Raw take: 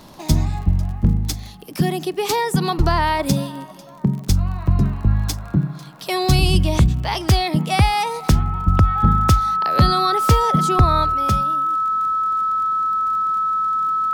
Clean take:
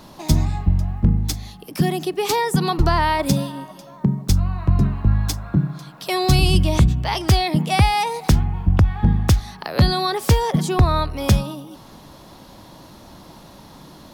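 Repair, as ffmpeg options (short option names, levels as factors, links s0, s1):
-af "adeclick=t=4,bandreject=f=1300:w=30,asetnsamples=n=441:p=0,asendcmd='11.14 volume volume 6dB',volume=1"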